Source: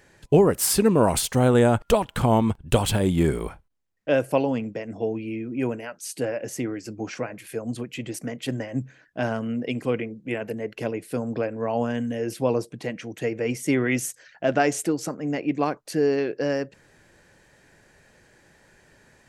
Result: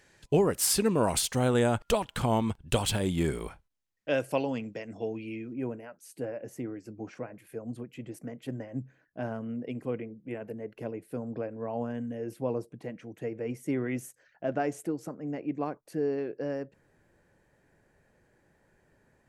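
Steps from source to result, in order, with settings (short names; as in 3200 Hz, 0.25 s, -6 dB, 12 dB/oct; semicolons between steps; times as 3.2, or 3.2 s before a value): bell 4900 Hz +5.5 dB 2.8 oct, from 5.53 s -11.5 dB; gain -7.5 dB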